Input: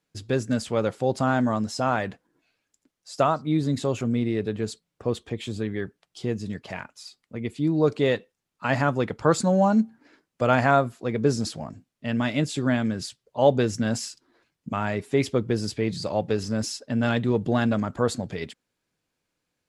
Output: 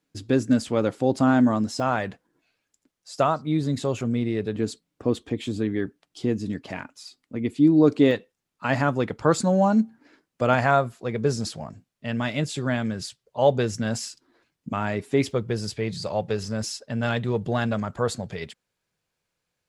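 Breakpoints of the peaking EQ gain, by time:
peaking EQ 280 Hz 0.48 oct
+9 dB
from 1.80 s -1 dB
from 4.55 s +11 dB
from 8.11 s +1.5 dB
from 10.54 s -6 dB
from 14.06 s +2 dB
from 15.31 s -10 dB

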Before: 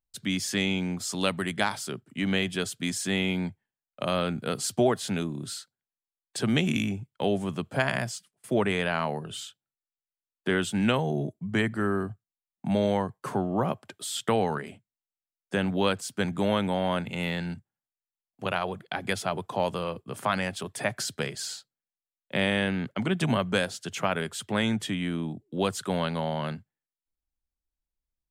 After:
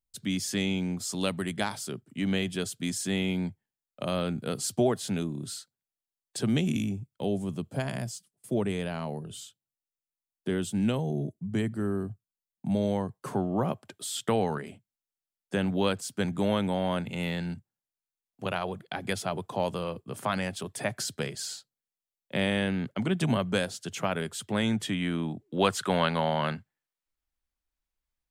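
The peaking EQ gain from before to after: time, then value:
peaking EQ 1.6 kHz 2.7 oct
6.37 s -6 dB
6.89 s -12.5 dB
12.69 s -12.5 dB
13.37 s -4 dB
24.60 s -4 dB
25.42 s +6 dB

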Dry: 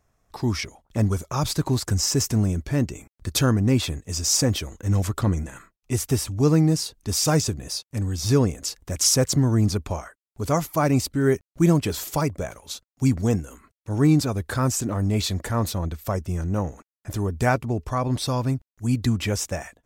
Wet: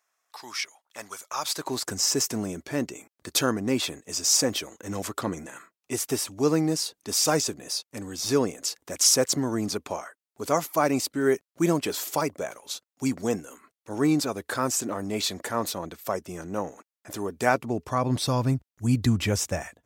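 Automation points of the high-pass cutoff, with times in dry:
1.27 s 1.1 kHz
1.84 s 300 Hz
17.40 s 300 Hz
18.49 s 70 Hz

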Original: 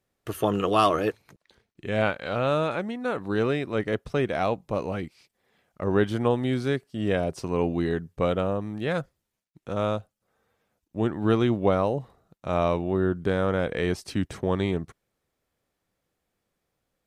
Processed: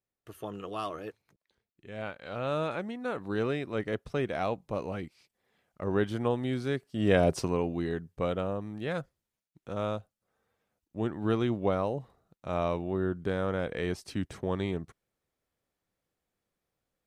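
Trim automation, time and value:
1.95 s -15 dB
2.62 s -5.5 dB
6.69 s -5.5 dB
7.36 s +5 dB
7.63 s -6 dB

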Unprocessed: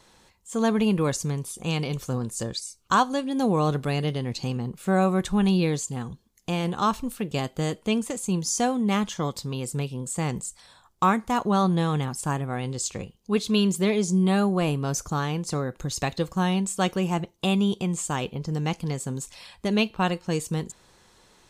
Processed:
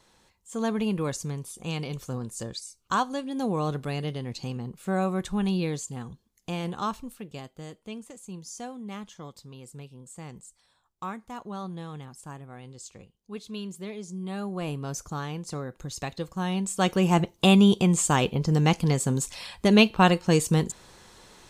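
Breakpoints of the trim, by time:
6.73 s -5 dB
7.56 s -14.5 dB
14.17 s -14.5 dB
14.73 s -6.5 dB
16.36 s -6.5 dB
17.20 s +5.5 dB

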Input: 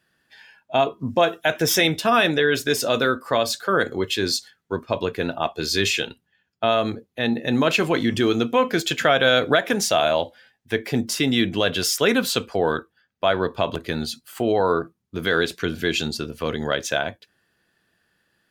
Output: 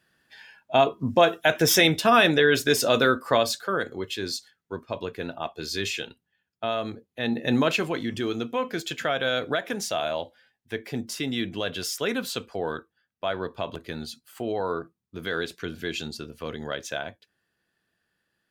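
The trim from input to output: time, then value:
3.34 s 0 dB
3.85 s -8 dB
7.04 s -8 dB
7.52 s -1 dB
7.98 s -8.5 dB

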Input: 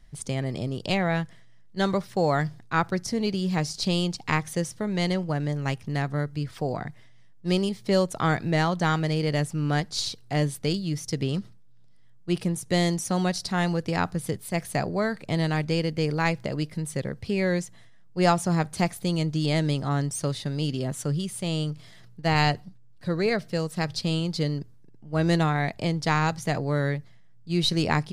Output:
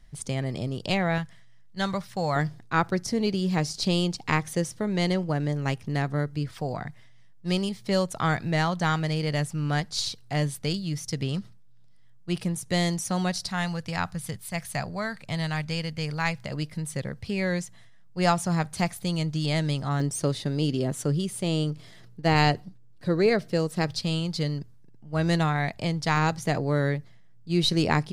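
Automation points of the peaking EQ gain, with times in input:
peaking EQ 360 Hz 1.3 oct
-1.5 dB
from 1.18 s -10 dB
from 2.36 s +1.5 dB
from 6.52 s -5 dB
from 13.49 s -14 dB
from 16.51 s -5.5 dB
from 20.00 s +4.5 dB
from 23.91 s -4 dB
from 26.17 s +2 dB

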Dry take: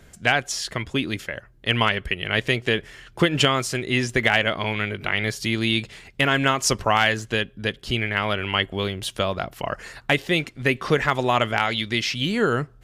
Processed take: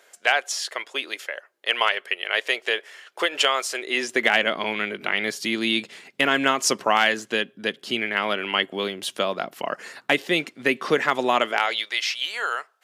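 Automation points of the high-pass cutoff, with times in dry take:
high-pass 24 dB/octave
3.69 s 470 Hz
4.37 s 210 Hz
11.31 s 210 Hz
12.03 s 700 Hz

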